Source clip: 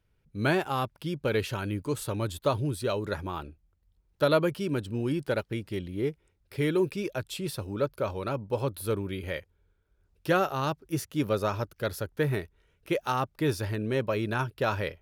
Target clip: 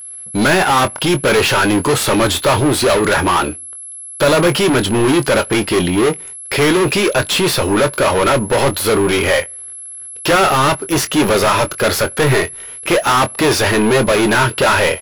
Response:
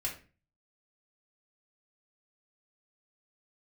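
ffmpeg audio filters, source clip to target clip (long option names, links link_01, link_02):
-filter_complex "[0:a]asplit=2[link_01][link_02];[link_02]highpass=frequency=720:poles=1,volume=36dB,asoftclip=type=tanh:threshold=-12dB[link_03];[link_01][link_03]amix=inputs=2:normalize=0,lowpass=frequency=4200:poles=1,volume=-6dB,aeval=exprs='sgn(val(0))*max(abs(val(0))-0.00299,0)':channel_layout=same,aeval=exprs='val(0)+0.0141*sin(2*PI*11000*n/s)':channel_layout=same,asplit=2[link_04][link_05];[link_05]adelay=23,volume=-10.5dB[link_06];[link_04][link_06]amix=inputs=2:normalize=0,asplit=2[link_07][link_08];[1:a]atrim=start_sample=2205[link_09];[link_08][link_09]afir=irnorm=-1:irlink=0,volume=-24.5dB[link_10];[link_07][link_10]amix=inputs=2:normalize=0,volume=6dB"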